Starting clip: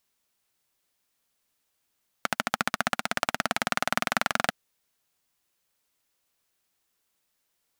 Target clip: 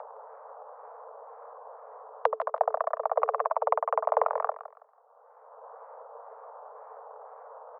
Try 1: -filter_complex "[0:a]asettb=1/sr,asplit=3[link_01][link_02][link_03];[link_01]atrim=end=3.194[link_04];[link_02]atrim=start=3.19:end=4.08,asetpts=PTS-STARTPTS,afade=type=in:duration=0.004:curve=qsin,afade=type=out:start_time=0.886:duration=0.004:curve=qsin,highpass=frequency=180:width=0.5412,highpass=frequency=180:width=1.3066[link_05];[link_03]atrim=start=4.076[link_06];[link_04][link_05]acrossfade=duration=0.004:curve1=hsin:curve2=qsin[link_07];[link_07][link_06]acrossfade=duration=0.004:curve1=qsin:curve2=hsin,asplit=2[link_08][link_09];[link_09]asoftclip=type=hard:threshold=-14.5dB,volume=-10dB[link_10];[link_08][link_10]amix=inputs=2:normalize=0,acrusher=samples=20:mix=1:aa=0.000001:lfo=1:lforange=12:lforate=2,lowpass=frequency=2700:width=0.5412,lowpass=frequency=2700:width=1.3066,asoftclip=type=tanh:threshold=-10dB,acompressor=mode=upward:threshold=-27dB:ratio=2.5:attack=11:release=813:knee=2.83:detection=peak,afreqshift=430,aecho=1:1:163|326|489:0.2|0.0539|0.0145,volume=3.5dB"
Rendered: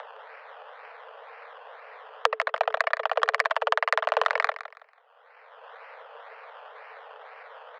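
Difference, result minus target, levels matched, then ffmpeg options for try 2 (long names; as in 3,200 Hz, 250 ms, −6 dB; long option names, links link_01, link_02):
2,000 Hz band +15.0 dB
-filter_complex "[0:a]asettb=1/sr,asplit=3[link_01][link_02][link_03];[link_01]atrim=end=3.194[link_04];[link_02]atrim=start=3.19:end=4.08,asetpts=PTS-STARTPTS,afade=type=in:duration=0.004:curve=qsin,afade=type=out:start_time=0.886:duration=0.004:curve=qsin,highpass=frequency=180:width=0.5412,highpass=frequency=180:width=1.3066[link_05];[link_03]atrim=start=4.076[link_06];[link_04][link_05]acrossfade=duration=0.004:curve1=hsin:curve2=qsin[link_07];[link_07][link_06]acrossfade=duration=0.004:curve1=qsin:curve2=hsin,asplit=2[link_08][link_09];[link_09]asoftclip=type=hard:threshold=-14.5dB,volume=-10dB[link_10];[link_08][link_10]amix=inputs=2:normalize=0,acrusher=samples=20:mix=1:aa=0.000001:lfo=1:lforange=12:lforate=2,lowpass=frequency=690:width=0.5412,lowpass=frequency=690:width=1.3066,asoftclip=type=tanh:threshold=-10dB,acompressor=mode=upward:threshold=-27dB:ratio=2.5:attack=11:release=813:knee=2.83:detection=peak,afreqshift=430,aecho=1:1:163|326|489:0.2|0.0539|0.0145,volume=3.5dB"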